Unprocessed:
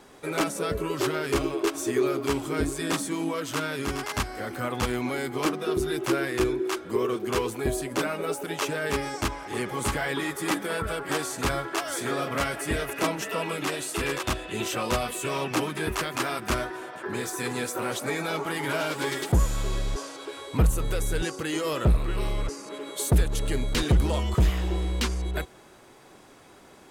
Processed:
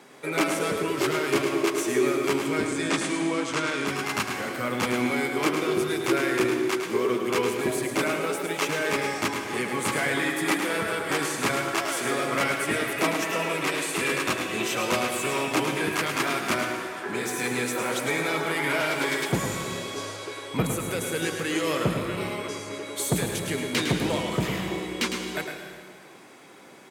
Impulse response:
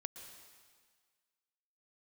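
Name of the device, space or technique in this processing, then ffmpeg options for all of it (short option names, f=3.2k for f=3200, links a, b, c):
PA in a hall: -filter_complex "[0:a]asettb=1/sr,asplit=3[a][b][c];[a]atrim=end=2.474[d];[b]atrim=start=2.47:end=3.87,asetpts=PTS-STARTPTS,afade=t=in:d=0.004:c=qsin,afade=t=out:st=1.396:d=0.004:c=qsin,lowpass=f=9.1k:w=0.5412,lowpass=f=9.1k:w=1.3066[e];[c]atrim=start=3.866[f];[d][e]acrossfade=d=0.004:c1=hsin:c2=qsin[g];[g][f]acrossfade=d=0.004:c1=qsin:c2=hsin,highpass=f=130:w=0.5412,highpass=f=130:w=1.3066,equalizer=f=2.2k:t=o:w=0.42:g=6,aecho=1:1:106:0.447[h];[1:a]atrim=start_sample=2205[i];[h][i]afir=irnorm=-1:irlink=0,volume=4.5dB"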